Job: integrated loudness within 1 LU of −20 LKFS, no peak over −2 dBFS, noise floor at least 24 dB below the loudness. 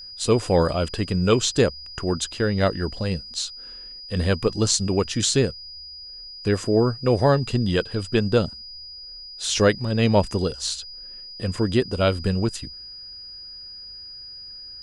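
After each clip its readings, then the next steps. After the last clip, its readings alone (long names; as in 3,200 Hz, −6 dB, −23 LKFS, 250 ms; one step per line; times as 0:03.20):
interfering tone 4,900 Hz; level of the tone −37 dBFS; integrated loudness −22.5 LKFS; sample peak −3.0 dBFS; target loudness −20.0 LKFS
→ notch filter 4,900 Hz, Q 30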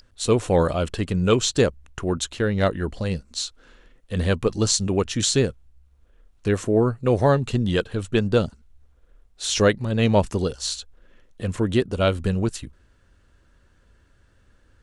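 interfering tone none found; integrated loudness −23.0 LKFS; sample peak −3.5 dBFS; target loudness −20.0 LKFS
→ level +3 dB
brickwall limiter −2 dBFS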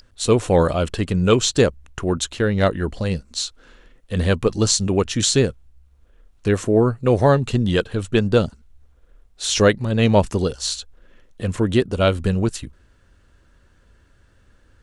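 integrated loudness −20.0 LKFS; sample peak −2.0 dBFS; background noise floor −56 dBFS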